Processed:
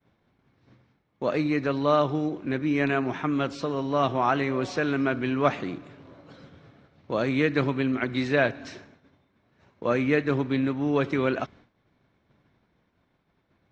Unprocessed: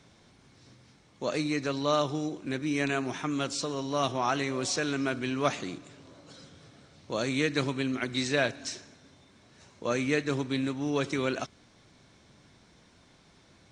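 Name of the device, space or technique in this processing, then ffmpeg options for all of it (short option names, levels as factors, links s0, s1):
hearing-loss simulation: -af "lowpass=2300,agate=range=0.0224:threshold=0.00316:ratio=3:detection=peak,volume=1.78"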